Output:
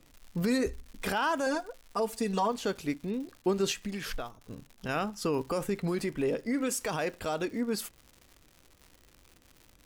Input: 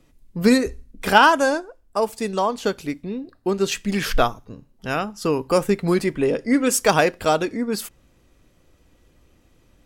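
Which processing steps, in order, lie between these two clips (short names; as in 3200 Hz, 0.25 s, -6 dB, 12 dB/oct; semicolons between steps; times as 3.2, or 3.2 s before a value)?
1.46–2.52 comb 4.2 ms, depth 91%; 3.71–4.89 compressor 12:1, threshold -30 dBFS, peak gain reduction 18.5 dB; limiter -15 dBFS, peak gain reduction 13.5 dB; vocal rider within 4 dB 2 s; crackle 180/s -36 dBFS; gain -6 dB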